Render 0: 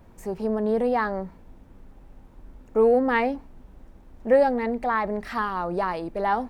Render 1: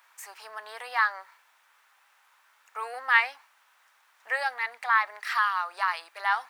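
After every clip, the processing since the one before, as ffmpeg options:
ffmpeg -i in.wav -af "highpass=frequency=1200:width=0.5412,highpass=frequency=1200:width=1.3066,volume=6.5dB" out.wav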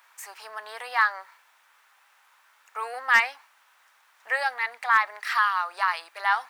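ffmpeg -i in.wav -af "asoftclip=type=hard:threshold=-12dB,volume=2.5dB" out.wav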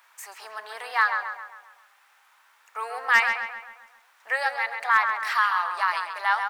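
ffmpeg -i in.wav -filter_complex "[0:a]asplit=2[link_01][link_02];[link_02]adelay=134,lowpass=frequency=3400:poles=1,volume=-6dB,asplit=2[link_03][link_04];[link_04]adelay=134,lowpass=frequency=3400:poles=1,volume=0.51,asplit=2[link_05][link_06];[link_06]adelay=134,lowpass=frequency=3400:poles=1,volume=0.51,asplit=2[link_07][link_08];[link_08]adelay=134,lowpass=frequency=3400:poles=1,volume=0.51,asplit=2[link_09][link_10];[link_10]adelay=134,lowpass=frequency=3400:poles=1,volume=0.51,asplit=2[link_11][link_12];[link_12]adelay=134,lowpass=frequency=3400:poles=1,volume=0.51[link_13];[link_01][link_03][link_05][link_07][link_09][link_11][link_13]amix=inputs=7:normalize=0" out.wav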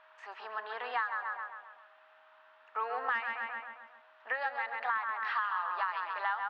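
ffmpeg -i in.wav -af "acompressor=threshold=-29dB:ratio=6,highpass=160,equalizer=frequency=170:width_type=q:width=4:gain=-6,equalizer=frequency=250:width_type=q:width=4:gain=10,equalizer=frequency=620:width_type=q:width=4:gain=-3,equalizer=frequency=2200:width_type=q:width=4:gain=-8,lowpass=frequency=3100:width=0.5412,lowpass=frequency=3100:width=1.3066,aeval=exprs='val(0)+0.000631*sin(2*PI*630*n/s)':channel_layout=same" out.wav

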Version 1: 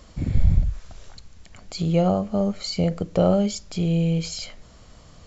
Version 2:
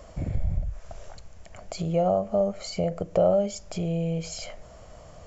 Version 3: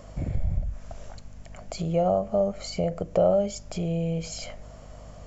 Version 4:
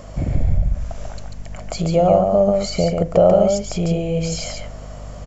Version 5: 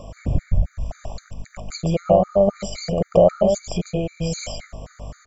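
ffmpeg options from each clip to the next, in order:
ffmpeg -i in.wav -af "acompressor=threshold=-29dB:ratio=2,equalizer=frequency=250:width_type=o:width=0.67:gain=-5,equalizer=frequency=630:width_type=o:width=0.67:gain=11,equalizer=frequency=4000:width_type=o:width=0.67:gain=-8" out.wav
ffmpeg -i in.wav -af "aeval=exprs='val(0)+0.00562*(sin(2*PI*50*n/s)+sin(2*PI*2*50*n/s)/2+sin(2*PI*3*50*n/s)/3+sin(2*PI*4*50*n/s)/4+sin(2*PI*5*50*n/s)/5)':channel_layout=same" out.wav
ffmpeg -i in.wav -af "aecho=1:1:141:0.631,volume=8dB" out.wav
ffmpeg -i in.wav -af "afftfilt=real='re*gt(sin(2*PI*3.8*pts/sr)*(1-2*mod(floor(b*sr/1024/1200),2)),0)':imag='im*gt(sin(2*PI*3.8*pts/sr)*(1-2*mod(floor(b*sr/1024/1200),2)),0)':win_size=1024:overlap=0.75" out.wav

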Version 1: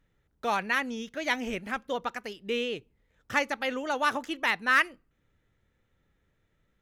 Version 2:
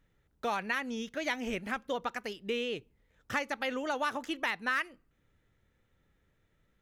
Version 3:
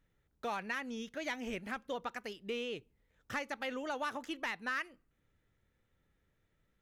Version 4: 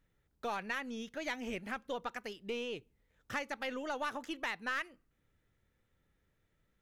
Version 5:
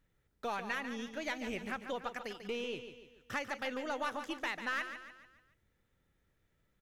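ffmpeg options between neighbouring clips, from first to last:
ffmpeg -i in.wav -af "acompressor=threshold=-30dB:ratio=3" out.wav
ffmpeg -i in.wav -af "asoftclip=type=tanh:threshold=-21dB,volume=-4.5dB" out.wav
ffmpeg -i in.wav -af "aeval=exprs='0.0473*(cos(1*acos(clip(val(0)/0.0473,-1,1)))-cos(1*PI/2))+0.00668*(cos(2*acos(clip(val(0)/0.0473,-1,1)))-cos(2*PI/2))':channel_layout=same" out.wav
ffmpeg -i in.wav -af "aecho=1:1:144|288|432|576|720:0.335|0.151|0.0678|0.0305|0.0137" out.wav

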